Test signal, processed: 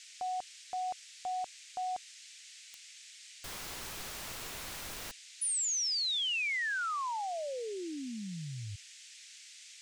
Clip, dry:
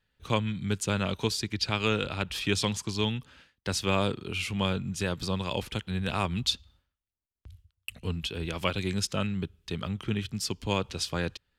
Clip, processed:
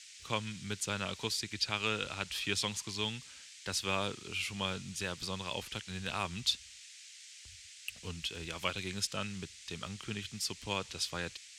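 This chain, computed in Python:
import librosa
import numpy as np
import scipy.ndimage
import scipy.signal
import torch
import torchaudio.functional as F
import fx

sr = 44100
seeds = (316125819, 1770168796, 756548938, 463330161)

y = fx.dmg_noise_band(x, sr, seeds[0], low_hz=1900.0, high_hz=8100.0, level_db=-50.0)
y = fx.tilt_shelf(y, sr, db=-4.5, hz=720.0)
y = y * 10.0 ** (-7.5 / 20.0)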